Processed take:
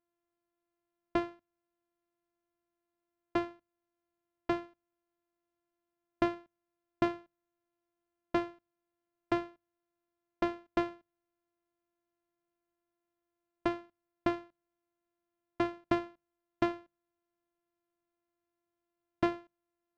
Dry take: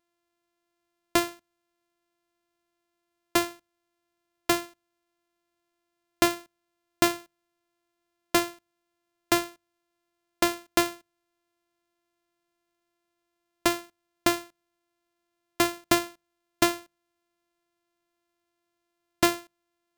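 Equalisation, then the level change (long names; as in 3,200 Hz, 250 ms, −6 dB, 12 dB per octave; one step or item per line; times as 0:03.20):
head-to-tape spacing loss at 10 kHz 40 dB
−4.0 dB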